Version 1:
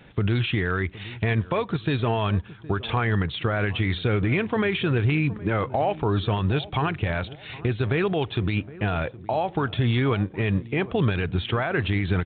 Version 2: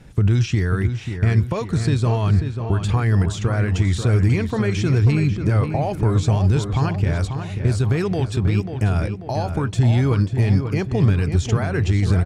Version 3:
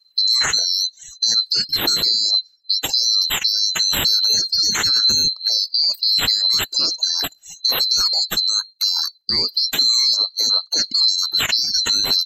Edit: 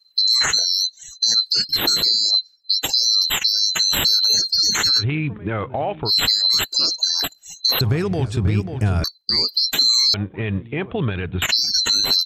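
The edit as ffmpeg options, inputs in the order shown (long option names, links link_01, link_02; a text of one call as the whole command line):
ffmpeg -i take0.wav -i take1.wav -i take2.wav -filter_complex "[0:a]asplit=2[link_01][link_02];[2:a]asplit=4[link_03][link_04][link_05][link_06];[link_03]atrim=end=5.04[link_07];[link_01]atrim=start=4.98:end=6.11[link_08];[link_04]atrim=start=6.05:end=7.812[link_09];[1:a]atrim=start=7.808:end=9.042[link_10];[link_05]atrim=start=9.038:end=10.142[link_11];[link_02]atrim=start=10.138:end=11.422[link_12];[link_06]atrim=start=11.418[link_13];[link_07][link_08]acrossfade=duration=0.06:curve1=tri:curve2=tri[link_14];[link_14][link_09]acrossfade=duration=0.06:curve1=tri:curve2=tri[link_15];[link_15][link_10]acrossfade=duration=0.004:curve1=hsin:curve2=hsin[link_16];[link_16][link_11]acrossfade=duration=0.004:curve1=hsin:curve2=hsin[link_17];[link_17][link_12]acrossfade=duration=0.004:curve1=hsin:curve2=hsin[link_18];[link_18][link_13]acrossfade=duration=0.004:curve1=hsin:curve2=hsin" out.wav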